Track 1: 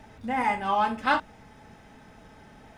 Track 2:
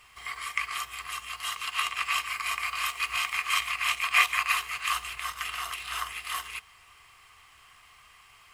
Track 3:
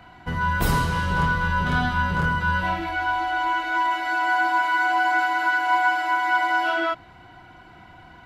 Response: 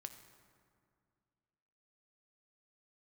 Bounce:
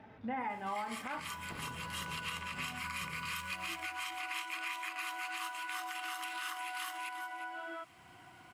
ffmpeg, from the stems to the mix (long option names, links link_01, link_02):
-filter_complex "[0:a]volume=-5.5dB,asplit=2[link_01][link_02];[link_02]volume=-12dB[link_03];[1:a]highpass=1200,alimiter=limit=-18dB:level=0:latency=1:release=315,adelay=500,volume=-7.5dB,asplit=2[link_04][link_05];[link_05]volume=-11.5dB[link_06];[2:a]acompressor=threshold=-31dB:ratio=6,adelay=900,volume=-10dB[link_07];[link_01][link_07]amix=inputs=2:normalize=0,highpass=100,lowpass=3100,alimiter=level_in=7dB:limit=-24dB:level=0:latency=1:release=409,volume=-7dB,volume=0dB[link_08];[3:a]atrim=start_sample=2205[link_09];[link_03][link_09]afir=irnorm=-1:irlink=0[link_10];[link_06]aecho=0:1:355:1[link_11];[link_04][link_08][link_10][link_11]amix=inputs=4:normalize=0,alimiter=level_in=5dB:limit=-24dB:level=0:latency=1:release=103,volume=-5dB"